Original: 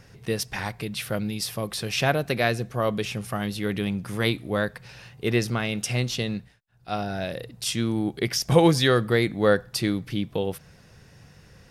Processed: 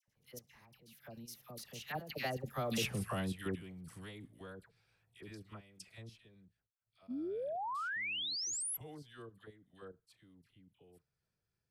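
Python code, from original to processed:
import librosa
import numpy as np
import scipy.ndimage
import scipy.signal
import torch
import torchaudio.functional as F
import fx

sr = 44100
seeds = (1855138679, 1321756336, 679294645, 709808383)

y = fx.doppler_pass(x, sr, speed_mps=32, closest_m=4.2, pass_at_s=2.86)
y = fx.high_shelf(y, sr, hz=12000.0, db=12.0)
y = fx.level_steps(y, sr, step_db=13)
y = fx.dispersion(y, sr, late='lows', ms=80.0, hz=1200.0)
y = fx.spec_paint(y, sr, seeds[0], shape='rise', start_s=7.08, length_s=1.69, low_hz=230.0, high_hz=12000.0, level_db=-42.0)
y = fx.attack_slew(y, sr, db_per_s=550.0)
y = y * 10.0 ** (3.0 / 20.0)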